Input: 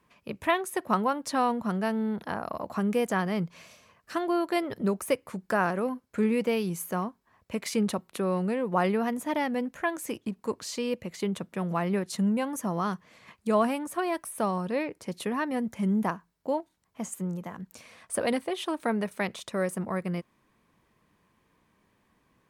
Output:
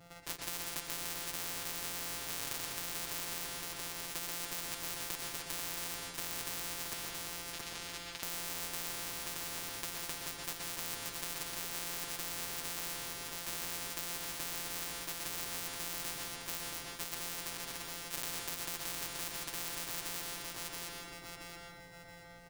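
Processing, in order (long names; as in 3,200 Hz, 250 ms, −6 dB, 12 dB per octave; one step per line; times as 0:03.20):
samples sorted by size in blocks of 256 samples
comb filter 7.3 ms, depth 91%
brickwall limiter −19.5 dBFS, peak gain reduction 9.5 dB
0:06.93–0:08.23: resonant band-pass 3,100 Hz, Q 1.9
0:08.90–0:10.43: downward compressor, threshold −29 dBFS, peak gain reduction 5.5 dB
repeating echo 676 ms, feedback 27%, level −9 dB
convolution reverb RT60 0.40 s, pre-delay 117 ms, DRR 2 dB
every bin compressed towards the loudest bin 10 to 1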